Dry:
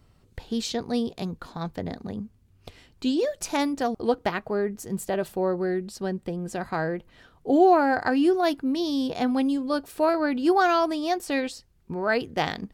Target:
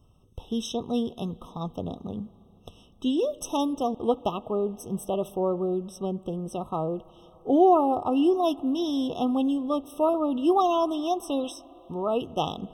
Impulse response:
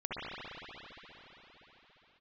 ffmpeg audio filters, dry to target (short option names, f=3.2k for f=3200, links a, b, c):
-filter_complex "[0:a]asettb=1/sr,asplit=3[a][b][c];[a]atrim=end=11.444[d];[b]atrim=start=11.44:end=11.95,asetpts=PTS-STARTPTS,afade=t=in:d=0.004:c=qsin,afade=t=out:st=0.506:d=0.004:c=qsin,tiltshelf=f=970:g=-3.5[e];[c]atrim=start=11.946[f];[d][e]acrossfade=d=0.004:c1=hsin:c2=qsin[g];[g][f]acrossfade=d=0.004:c1=qsin:c2=hsin,asplit=2[h][i];[1:a]atrim=start_sample=2205[j];[i][j]afir=irnorm=-1:irlink=0,volume=-26.5dB[k];[h][k]amix=inputs=2:normalize=0,afftfilt=real='re*eq(mod(floor(b*sr/1024/1300),2),0)':imag='im*eq(mod(floor(b*sr/1024/1300),2),0)':win_size=1024:overlap=0.75,volume=-1dB"